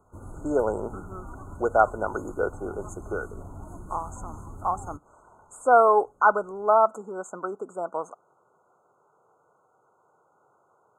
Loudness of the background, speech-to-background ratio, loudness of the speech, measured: -43.0 LUFS, 17.5 dB, -25.5 LUFS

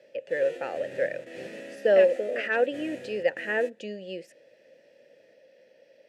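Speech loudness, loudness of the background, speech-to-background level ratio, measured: -27.0 LUFS, -43.0 LUFS, 16.0 dB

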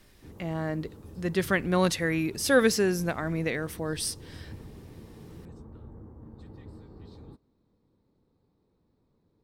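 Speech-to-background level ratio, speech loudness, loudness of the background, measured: 20.0 dB, -27.5 LUFS, -47.5 LUFS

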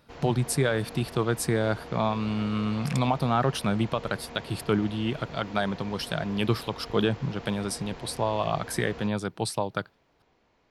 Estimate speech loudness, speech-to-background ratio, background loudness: -28.5 LUFS, 15.0 dB, -43.5 LUFS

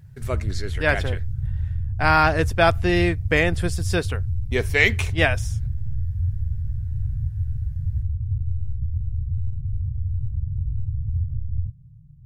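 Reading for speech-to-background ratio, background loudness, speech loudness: 6.0 dB, -28.0 LUFS, -22.0 LUFS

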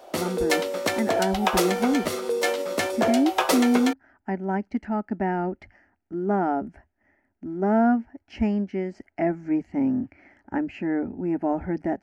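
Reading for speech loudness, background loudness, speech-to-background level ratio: -26.5 LUFS, -25.5 LUFS, -1.0 dB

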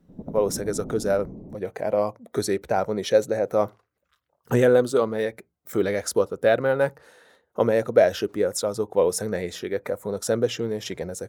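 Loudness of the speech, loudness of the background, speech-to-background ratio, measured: -24.0 LUFS, -38.0 LUFS, 14.0 dB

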